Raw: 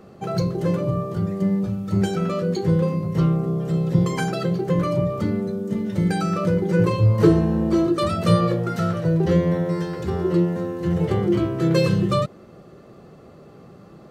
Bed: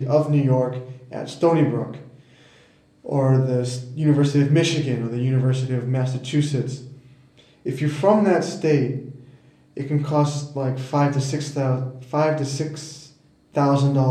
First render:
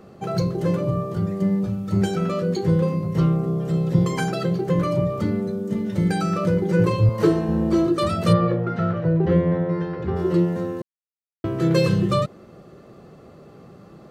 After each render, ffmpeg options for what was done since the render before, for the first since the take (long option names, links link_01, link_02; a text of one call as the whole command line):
ffmpeg -i in.wav -filter_complex "[0:a]asettb=1/sr,asplit=3[link_01][link_02][link_03];[link_01]atrim=end=7.094[link_04];[link_02]atrim=start=7.09:end=7.49,asetpts=PTS-STARTPTS,afade=type=in:duration=0.004:curve=qsin,afade=type=out:start_time=0.396:duration=0.004:curve=qsin,highpass=frequency=290:poles=1[link_05];[link_03]atrim=start=7.486[link_06];[link_04][link_05]acrossfade=duration=0.004:curve1=hsin:curve2=qsin[link_07];[link_07][link_06]acrossfade=duration=0.004:curve1=qsin:curve2=hsin,asplit=3[link_08][link_09][link_10];[link_08]afade=type=out:start_time=8.32:duration=0.02[link_11];[link_09]lowpass=2300,afade=type=in:start_time=8.32:duration=0.02,afade=type=out:start_time=10.15:duration=0.02[link_12];[link_10]afade=type=in:start_time=10.15:duration=0.02[link_13];[link_11][link_12][link_13]amix=inputs=3:normalize=0,asplit=3[link_14][link_15][link_16];[link_14]atrim=end=10.82,asetpts=PTS-STARTPTS,afade=type=out:start_time=10.816:duration=0.004:curve=hsin[link_17];[link_15]atrim=start=10.82:end=11.44,asetpts=PTS-STARTPTS,volume=0[link_18];[link_16]atrim=start=11.44,asetpts=PTS-STARTPTS,afade=type=in:duration=0.004:curve=hsin[link_19];[link_17][link_18][link_19]concat=n=3:v=0:a=1" out.wav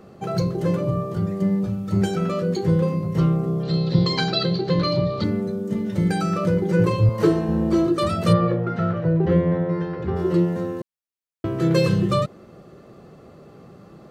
ffmpeg -i in.wav -filter_complex "[0:a]asettb=1/sr,asplit=3[link_01][link_02][link_03];[link_01]atrim=end=3.634[link_04];[link_02]atrim=start=3.63:end=5.24,asetpts=PTS-STARTPTS,afade=type=in:duration=0.004:curve=qsin,afade=type=out:start_time=1.606:duration=0.004:curve=qsin,lowpass=frequency=4200:width_type=q:width=11[link_05];[link_03]atrim=start=5.236[link_06];[link_04][link_05]acrossfade=duration=0.004:curve1=hsin:curve2=qsin[link_07];[link_07][link_06]acrossfade=duration=0.004:curve1=qsin:curve2=hsin" out.wav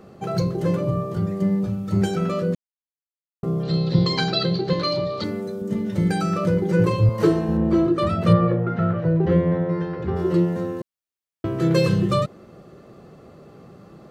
ffmpeg -i in.wav -filter_complex "[0:a]asettb=1/sr,asplit=3[link_01][link_02][link_03];[link_01]atrim=end=4.734[link_04];[link_02]atrim=start=4.73:end=5.62,asetpts=PTS-STARTPTS,afade=type=in:duration=0.004:curve=qsin,afade=type=out:start_time=0.886:duration=0.004:curve=qsin,bass=frequency=250:gain=-9,treble=frequency=4000:gain=4[link_05];[link_03]atrim=start=5.616[link_06];[link_04][link_05]acrossfade=duration=0.004:curve1=hsin:curve2=qsin[link_07];[link_07][link_06]acrossfade=duration=0.004:curve1=qsin:curve2=hsin,asettb=1/sr,asplit=3[link_08][link_09][link_10];[link_08]atrim=end=7.574[link_11];[link_09]atrim=start=7.57:end=8.99,asetpts=PTS-STARTPTS,afade=type=in:duration=0.004:curve=qsin,afade=type=out:start_time=1.416:duration=0.004:curve=qsin,bass=frequency=250:gain=2,treble=frequency=4000:gain=-11[link_12];[link_10]atrim=start=8.986[link_13];[link_11][link_12]acrossfade=duration=0.004:curve1=hsin:curve2=qsin[link_14];[link_14][link_13]acrossfade=duration=0.004:curve1=qsin:curve2=hsin,asplit=3[link_15][link_16][link_17];[link_15]atrim=end=2.55,asetpts=PTS-STARTPTS,afade=type=out:start_time=2.546:duration=0.004:curve=hsin[link_18];[link_16]atrim=start=2.55:end=3.43,asetpts=PTS-STARTPTS,volume=0[link_19];[link_17]atrim=start=3.43,asetpts=PTS-STARTPTS,afade=type=in:duration=0.004:curve=hsin[link_20];[link_18][link_19][link_20]concat=n=3:v=0:a=1" out.wav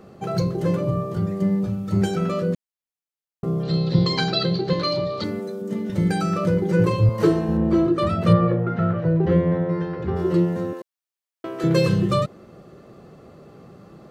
ffmpeg -i in.wav -filter_complex "[0:a]asettb=1/sr,asplit=3[link_01][link_02][link_03];[link_01]atrim=end=5.394[link_04];[link_02]atrim=start=5.39:end=5.9,asetpts=PTS-STARTPTS,afade=type=in:duration=0.004:curve=qsin,afade=type=out:start_time=0.506:duration=0.004:curve=qsin,highpass=190[link_05];[link_03]atrim=start=5.896[link_06];[link_04][link_05]acrossfade=duration=0.004:curve1=hsin:curve2=qsin[link_07];[link_07][link_06]acrossfade=duration=0.004:curve1=qsin:curve2=hsin,asettb=1/sr,asplit=3[link_08][link_09][link_10];[link_08]atrim=end=10.734[link_11];[link_09]atrim=start=10.73:end=11.64,asetpts=PTS-STARTPTS,afade=type=in:duration=0.004:curve=qsin,afade=type=out:start_time=0.906:duration=0.004:curve=qsin,highpass=430[link_12];[link_10]atrim=start=11.636[link_13];[link_11][link_12]acrossfade=duration=0.004:curve1=hsin:curve2=qsin[link_14];[link_14][link_13]acrossfade=duration=0.004:curve1=qsin:curve2=hsin" out.wav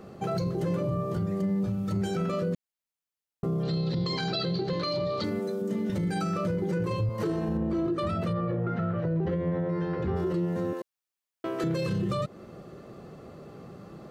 ffmpeg -i in.wav -af "acompressor=threshold=-26dB:ratio=2.5,alimiter=limit=-21.5dB:level=0:latency=1:release=14" out.wav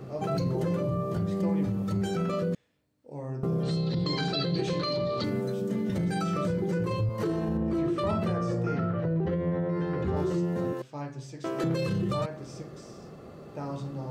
ffmpeg -i in.wav -i bed.wav -filter_complex "[1:a]volume=-18.5dB[link_01];[0:a][link_01]amix=inputs=2:normalize=0" out.wav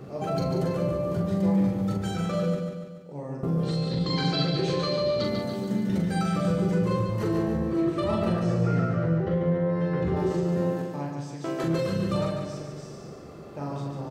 ffmpeg -i in.wav -filter_complex "[0:a]asplit=2[link_01][link_02];[link_02]adelay=42,volume=-4.5dB[link_03];[link_01][link_03]amix=inputs=2:normalize=0,aecho=1:1:144|288|432|576|720|864|1008:0.531|0.281|0.149|0.079|0.0419|0.0222|0.0118" out.wav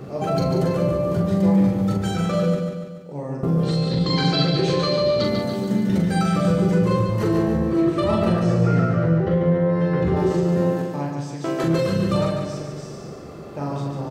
ffmpeg -i in.wav -af "volume=6dB" out.wav